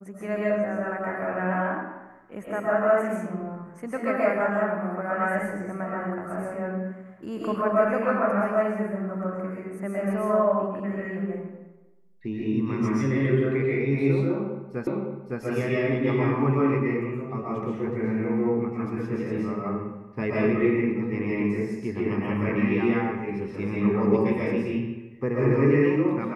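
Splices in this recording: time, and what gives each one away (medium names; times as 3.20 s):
14.87 s: repeat of the last 0.56 s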